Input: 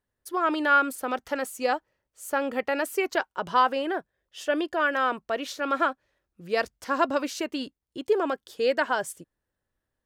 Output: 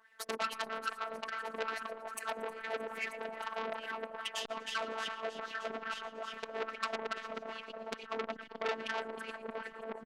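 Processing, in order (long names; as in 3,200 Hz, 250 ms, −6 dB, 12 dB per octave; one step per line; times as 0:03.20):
reversed piece by piece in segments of 99 ms
parametric band 170 Hz −13.5 dB 0.78 octaves
gate with flip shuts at −28 dBFS, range −30 dB
echo machine with several playback heads 312 ms, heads all three, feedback 48%, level −13 dB
LFO wah 2.4 Hz 390–2,200 Hz, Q 2.6
in parallel at −4 dB: sine wavefolder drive 16 dB, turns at −33 dBFS
on the sum: echo with shifted repeats 115 ms, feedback 40%, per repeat −100 Hz, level −14.5 dB
random phases in short frames
speech leveller within 4 dB 2 s
phases set to zero 223 Hz
saturating transformer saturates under 3,500 Hz
level +12 dB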